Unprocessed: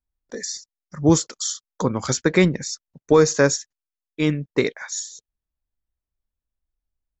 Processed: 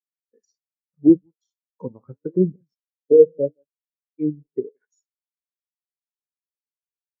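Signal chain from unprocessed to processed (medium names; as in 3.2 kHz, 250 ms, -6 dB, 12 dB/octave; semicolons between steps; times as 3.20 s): delay 167 ms -17 dB; dynamic bell 830 Hz, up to +8 dB, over -32 dBFS, Q 0.85; in parallel at -1 dB: compression 6:1, threshold -25 dBFS, peak gain reduction 18 dB; on the sum: crossover distortion -32 dBFS; low-pass that closes with the level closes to 450 Hz, closed at -11.5 dBFS; flange 0.78 Hz, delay 6.8 ms, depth 9.7 ms, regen -75%; spectral contrast expander 2.5:1; trim +3 dB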